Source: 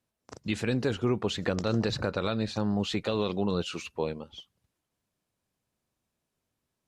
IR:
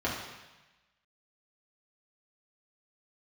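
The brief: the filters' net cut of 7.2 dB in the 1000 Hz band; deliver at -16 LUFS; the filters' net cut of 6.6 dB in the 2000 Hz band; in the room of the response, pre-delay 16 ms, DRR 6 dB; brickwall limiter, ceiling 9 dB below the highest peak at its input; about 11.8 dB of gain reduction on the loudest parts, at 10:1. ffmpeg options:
-filter_complex "[0:a]equalizer=f=1k:t=o:g=-8,equalizer=f=2k:t=o:g=-6.5,acompressor=threshold=-36dB:ratio=10,alimiter=level_in=9.5dB:limit=-24dB:level=0:latency=1,volume=-9.5dB,asplit=2[a][b];[1:a]atrim=start_sample=2205,adelay=16[c];[b][c]afir=irnorm=-1:irlink=0,volume=-15.5dB[d];[a][d]amix=inputs=2:normalize=0,volume=27.5dB"

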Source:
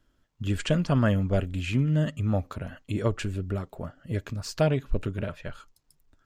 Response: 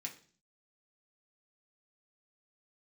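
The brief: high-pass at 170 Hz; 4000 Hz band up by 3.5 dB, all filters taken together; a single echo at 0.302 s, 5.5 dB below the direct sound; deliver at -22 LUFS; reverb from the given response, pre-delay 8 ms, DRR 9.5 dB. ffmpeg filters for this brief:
-filter_complex "[0:a]highpass=170,equalizer=f=4k:t=o:g=5,aecho=1:1:302:0.531,asplit=2[a][b];[1:a]atrim=start_sample=2205,adelay=8[c];[b][c]afir=irnorm=-1:irlink=0,volume=-7.5dB[d];[a][d]amix=inputs=2:normalize=0,volume=7.5dB"

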